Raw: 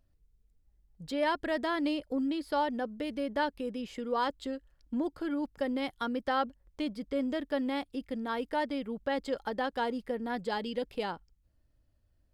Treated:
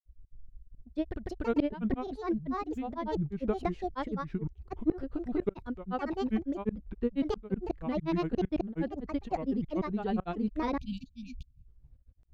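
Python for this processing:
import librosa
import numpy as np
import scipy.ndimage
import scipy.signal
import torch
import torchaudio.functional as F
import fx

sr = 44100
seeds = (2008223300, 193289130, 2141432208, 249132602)

p1 = fx.tremolo_shape(x, sr, shape='saw_up', hz=3.2, depth_pct=100)
p2 = fx.riaa(p1, sr, side='playback')
p3 = fx.granulator(p2, sr, seeds[0], grain_ms=100.0, per_s=20.0, spray_ms=513.0, spread_st=7)
p4 = fx.spec_erase(p3, sr, start_s=10.79, length_s=0.88, low_hz=260.0, high_hz=2300.0)
p5 = fx.rider(p4, sr, range_db=3, speed_s=2.0)
p6 = p4 + F.gain(torch.from_numpy(p5), 3.0).numpy()
y = F.gain(torch.from_numpy(p6), -5.5).numpy()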